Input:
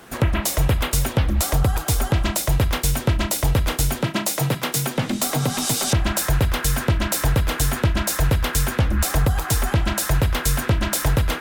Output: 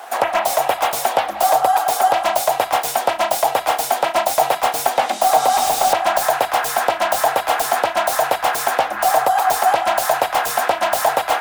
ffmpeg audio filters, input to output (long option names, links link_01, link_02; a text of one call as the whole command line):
ffmpeg -i in.wav -filter_complex "[0:a]highpass=frequency=740:width_type=q:width=5.7,acrossover=split=1200[link_01][link_02];[link_02]aeval=exprs='0.0631*(abs(mod(val(0)/0.0631+3,4)-2)-1)':channel_layout=same[link_03];[link_01][link_03]amix=inputs=2:normalize=0,volume=5dB" out.wav